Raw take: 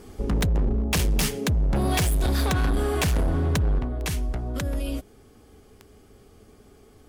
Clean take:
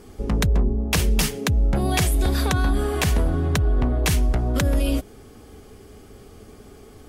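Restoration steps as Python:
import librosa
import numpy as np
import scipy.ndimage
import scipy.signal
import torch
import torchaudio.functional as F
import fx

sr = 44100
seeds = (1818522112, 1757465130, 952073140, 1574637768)

y = fx.fix_declip(x, sr, threshold_db=-19.0)
y = fx.fix_declick_ar(y, sr, threshold=10.0)
y = fx.gain(y, sr, db=fx.steps((0.0, 0.0), (3.79, 7.5)))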